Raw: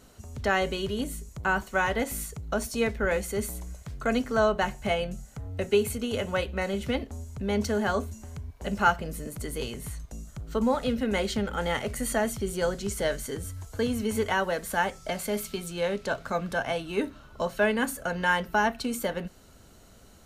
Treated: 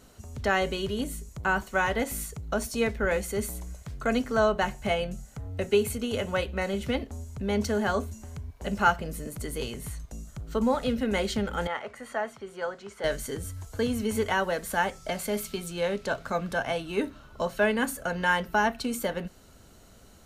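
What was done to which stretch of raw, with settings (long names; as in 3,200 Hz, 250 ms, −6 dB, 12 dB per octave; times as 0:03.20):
0:11.67–0:13.04: resonant band-pass 1,100 Hz, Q 1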